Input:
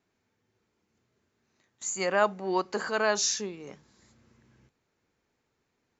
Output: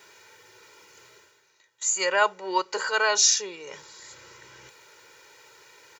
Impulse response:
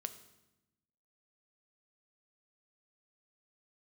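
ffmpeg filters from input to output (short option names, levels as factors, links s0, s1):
-af "highpass=f=1300:p=1,aecho=1:1:2.1:0.91,areverse,acompressor=mode=upward:threshold=0.00891:ratio=2.5,areverse,volume=2"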